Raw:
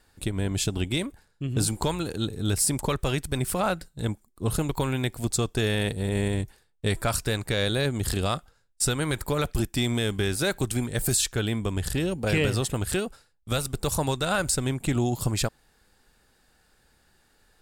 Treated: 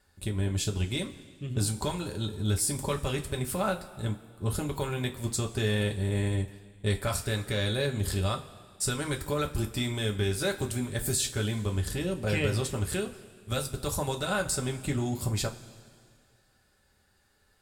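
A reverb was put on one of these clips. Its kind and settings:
coupled-rooms reverb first 0.2 s, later 2.1 s, from −20 dB, DRR 1.5 dB
level −6.5 dB

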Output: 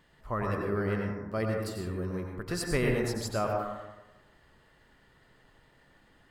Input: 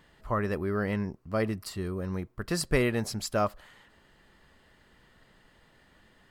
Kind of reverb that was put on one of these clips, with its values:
dense smooth reverb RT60 1.1 s, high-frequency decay 0.3×, pre-delay 80 ms, DRR 0.5 dB
level −4 dB

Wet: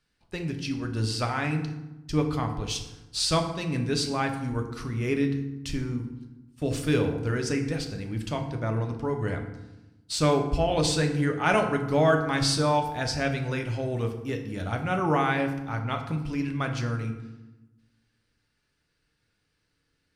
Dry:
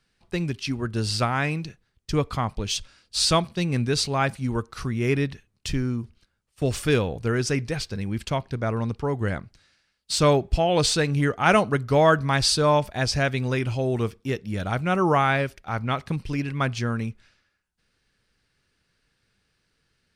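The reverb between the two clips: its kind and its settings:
feedback delay network reverb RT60 1 s, low-frequency decay 1.45×, high-frequency decay 0.6×, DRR 3.5 dB
level −5.5 dB

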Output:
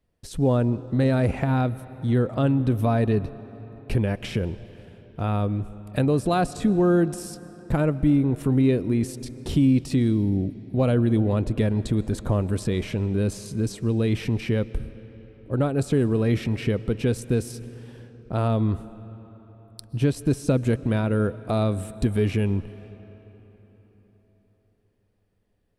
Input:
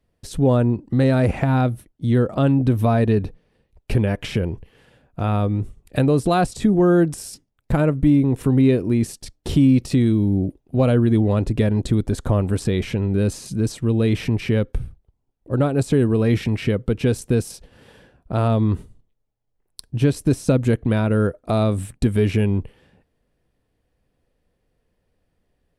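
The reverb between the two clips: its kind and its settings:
comb and all-pass reverb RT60 4.5 s, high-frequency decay 0.65×, pre-delay 90 ms, DRR 16.5 dB
level −4 dB

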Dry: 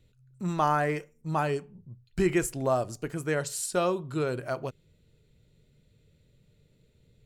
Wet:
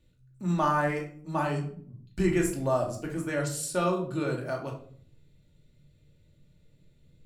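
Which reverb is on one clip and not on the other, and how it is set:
rectangular room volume 580 cubic metres, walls furnished, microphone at 2.5 metres
level −4 dB

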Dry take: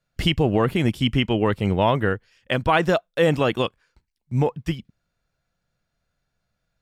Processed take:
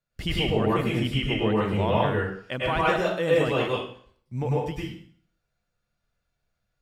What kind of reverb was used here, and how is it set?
dense smooth reverb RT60 0.54 s, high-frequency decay 0.95×, pre-delay 90 ms, DRR −6 dB
level −9.5 dB

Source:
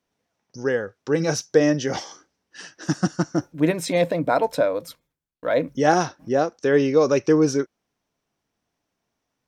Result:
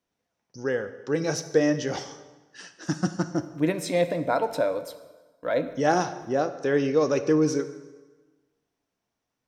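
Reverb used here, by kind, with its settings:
dense smooth reverb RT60 1.3 s, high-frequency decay 0.8×, DRR 10 dB
level −4.5 dB

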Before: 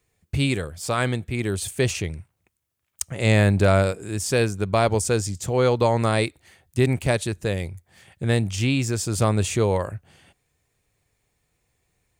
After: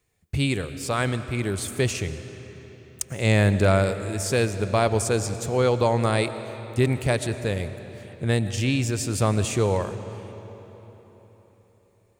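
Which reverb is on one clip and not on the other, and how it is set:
comb and all-pass reverb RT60 4.2 s, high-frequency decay 0.75×, pre-delay 70 ms, DRR 11 dB
level −1.5 dB

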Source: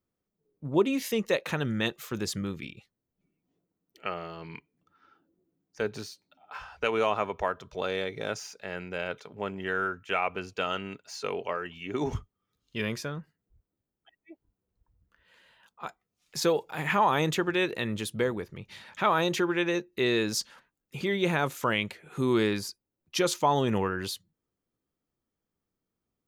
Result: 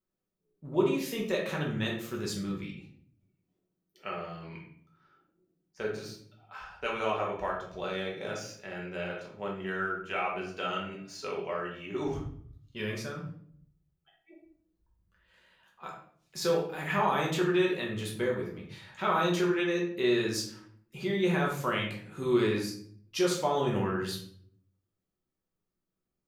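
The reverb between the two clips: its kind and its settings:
rectangular room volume 88 cubic metres, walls mixed, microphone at 1.1 metres
level −7.5 dB

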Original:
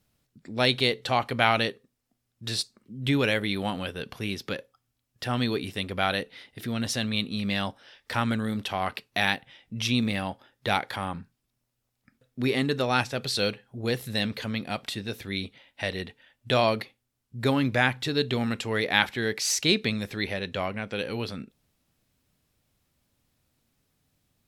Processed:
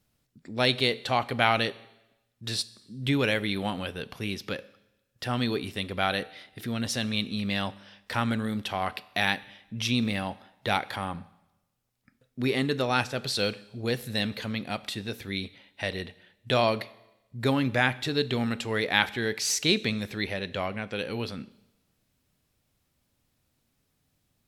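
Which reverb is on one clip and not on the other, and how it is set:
four-comb reverb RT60 0.96 s, combs from 30 ms, DRR 18.5 dB
level −1 dB

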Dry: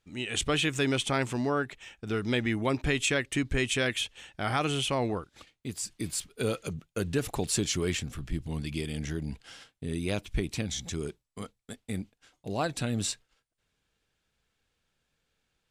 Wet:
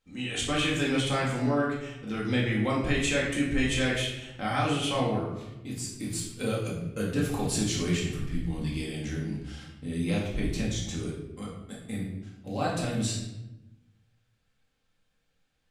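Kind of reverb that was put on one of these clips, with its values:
rectangular room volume 350 cubic metres, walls mixed, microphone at 2.1 metres
level −5.5 dB

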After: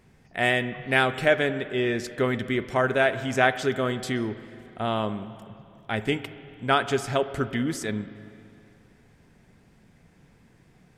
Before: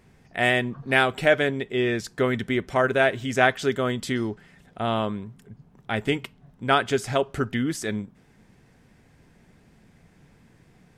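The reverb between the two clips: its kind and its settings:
spring reverb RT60 2.6 s, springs 38/46/55 ms, chirp 45 ms, DRR 12.5 dB
level −1.5 dB

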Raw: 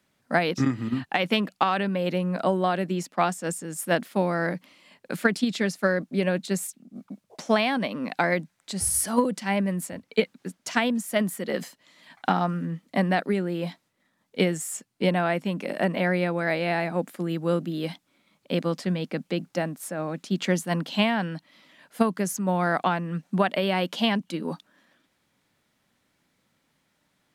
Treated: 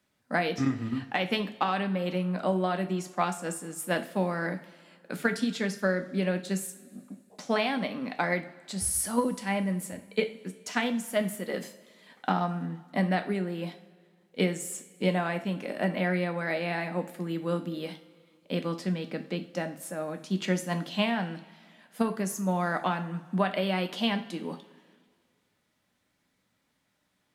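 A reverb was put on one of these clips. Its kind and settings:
coupled-rooms reverb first 0.37 s, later 2 s, from −18 dB, DRR 6 dB
level −5 dB

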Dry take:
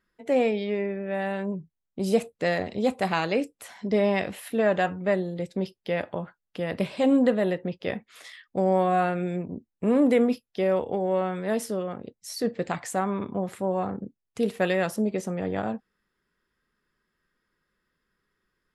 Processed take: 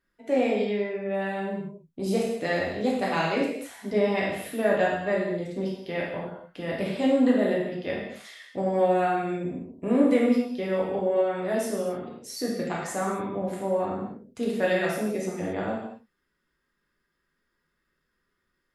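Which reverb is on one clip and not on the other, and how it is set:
reverb whose tail is shaped and stops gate 300 ms falling, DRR −4 dB
level −5 dB

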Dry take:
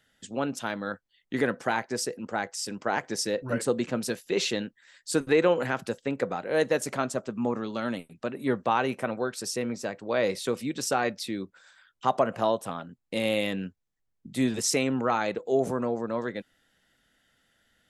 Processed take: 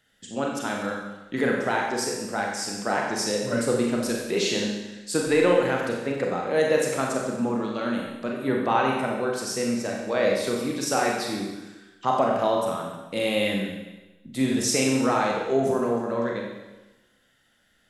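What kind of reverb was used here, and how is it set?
four-comb reverb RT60 1.1 s, combs from 30 ms, DRR −1 dB

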